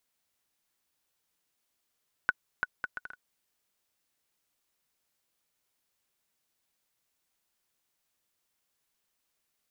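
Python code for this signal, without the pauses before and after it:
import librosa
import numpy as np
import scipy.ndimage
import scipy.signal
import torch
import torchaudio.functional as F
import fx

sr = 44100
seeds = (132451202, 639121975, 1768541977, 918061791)

y = fx.bouncing_ball(sr, first_gap_s=0.34, ratio=0.62, hz=1480.0, decay_ms=34.0, level_db=-12.0)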